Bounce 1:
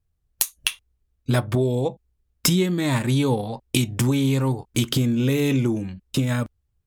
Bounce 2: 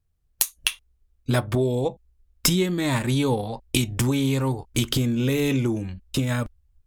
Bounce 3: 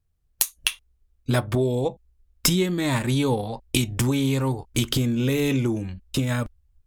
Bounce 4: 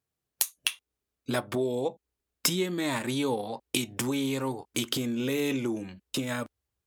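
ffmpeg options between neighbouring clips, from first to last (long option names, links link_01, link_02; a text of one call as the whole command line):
ffmpeg -i in.wav -af "asubboost=boost=6.5:cutoff=57" out.wav
ffmpeg -i in.wav -af anull out.wav
ffmpeg -i in.wav -filter_complex "[0:a]highpass=230,asplit=2[link_01][link_02];[link_02]acompressor=threshold=-32dB:ratio=6,volume=0dB[link_03];[link_01][link_03]amix=inputs=2:normalize=0,volume=-6.5dB" out.wav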